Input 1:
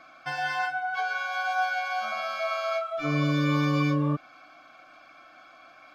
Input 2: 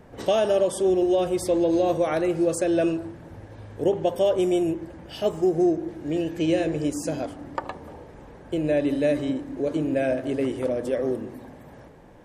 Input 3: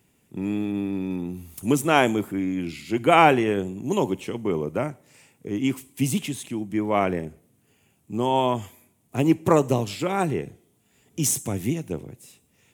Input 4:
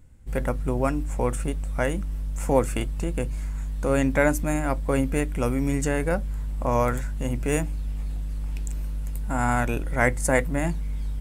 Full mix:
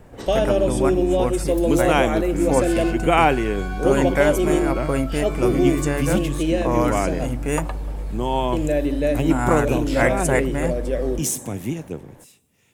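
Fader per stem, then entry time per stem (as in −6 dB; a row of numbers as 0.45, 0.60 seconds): −6.5, +1.0, −1.0, +1.0 decibels; 2.25, 0.00, 0.00, 0.00 seconds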